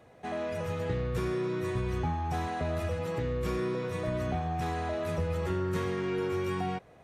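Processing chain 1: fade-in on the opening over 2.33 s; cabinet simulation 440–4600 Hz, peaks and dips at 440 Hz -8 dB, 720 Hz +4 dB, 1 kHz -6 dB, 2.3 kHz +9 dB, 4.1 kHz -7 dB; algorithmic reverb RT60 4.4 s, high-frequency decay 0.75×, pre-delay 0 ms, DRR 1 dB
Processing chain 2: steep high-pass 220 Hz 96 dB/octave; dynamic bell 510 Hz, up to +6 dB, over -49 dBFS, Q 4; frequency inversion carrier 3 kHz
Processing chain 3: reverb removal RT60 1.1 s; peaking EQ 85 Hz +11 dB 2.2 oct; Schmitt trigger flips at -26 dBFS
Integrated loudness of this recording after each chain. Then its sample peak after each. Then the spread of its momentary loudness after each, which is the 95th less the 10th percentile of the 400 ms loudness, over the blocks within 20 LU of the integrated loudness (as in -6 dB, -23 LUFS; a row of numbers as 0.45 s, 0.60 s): -34.0 LUFS, -29.0 LUFS, -33.0 LUFS; -21.5 dBFS, -21.0 dBFS, -22.5 dBFS; 13 LU, 5 LU, 4 LU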